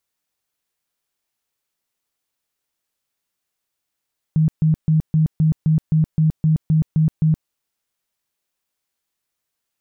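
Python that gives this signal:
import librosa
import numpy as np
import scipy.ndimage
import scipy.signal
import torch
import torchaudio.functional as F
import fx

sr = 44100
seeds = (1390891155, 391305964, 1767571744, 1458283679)

y = fx.tone_burst(sr, hz=157.0, cycles=19, every_s=0.26, bursts=12, level_db=-12.0)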